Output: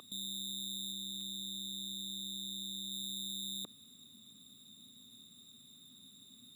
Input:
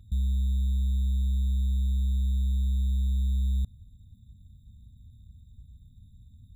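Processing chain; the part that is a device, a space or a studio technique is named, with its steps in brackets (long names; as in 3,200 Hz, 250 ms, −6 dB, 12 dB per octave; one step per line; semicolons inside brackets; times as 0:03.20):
laptop speaker (high-pass filter 350 Hz 24 dB per octave; parametric band 1,200 Hz +10 dB 0.31 octaves; parametric band 2,800 Hz +6 dB 0.59 octaves; brickwall limiter −49 dBFS, peak gain reduction 7.5 dB)
0:00.92–0:02.92: high-shelf EQ 6,300 Hz −4 dB
level +18 dB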